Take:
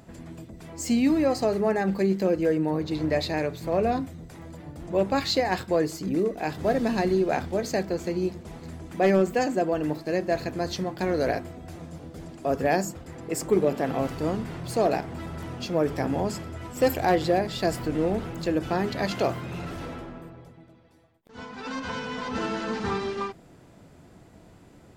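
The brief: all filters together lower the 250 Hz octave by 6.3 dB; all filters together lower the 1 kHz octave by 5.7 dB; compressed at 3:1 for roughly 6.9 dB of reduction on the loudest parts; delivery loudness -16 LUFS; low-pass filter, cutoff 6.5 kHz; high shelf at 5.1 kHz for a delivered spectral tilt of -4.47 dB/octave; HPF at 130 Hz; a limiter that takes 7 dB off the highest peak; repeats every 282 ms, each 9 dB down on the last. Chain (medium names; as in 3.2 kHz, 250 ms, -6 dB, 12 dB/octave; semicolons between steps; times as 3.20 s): high-pass 130 Hz; low-pass 6.5 kHz; peaking EQ 250 Hz -8 dB; peaking EQ 1 kHz -8.5 dB; treble shelf 5.1 kHz +4.5 dB; compression 3:1, threshold -30 dBFS; peak limiter -25 dBFS; feedback delay 282 ms, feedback 35%, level -9 dB; trim +20 dB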